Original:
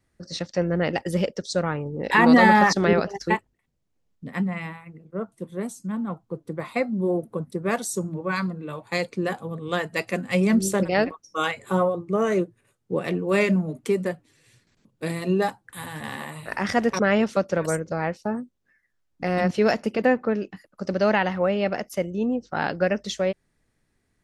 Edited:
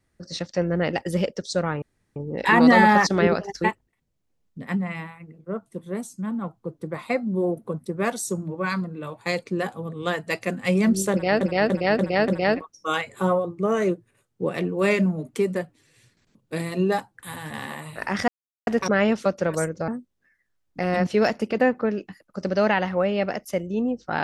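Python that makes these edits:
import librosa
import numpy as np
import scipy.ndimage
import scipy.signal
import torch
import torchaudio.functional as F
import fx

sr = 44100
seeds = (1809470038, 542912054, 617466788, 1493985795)

y = fx.edit(x, sr, fx.insert_room_tone(at_s=1.82, length_s=0.34),
    fx.repeat(start_s=10.78, length_s=0.29, count=5),
    fx.insert_silence(at_s=16.78, length_s=0.39),
    fx.cut(start_s=17.99, length_s=0.33), tone=tone)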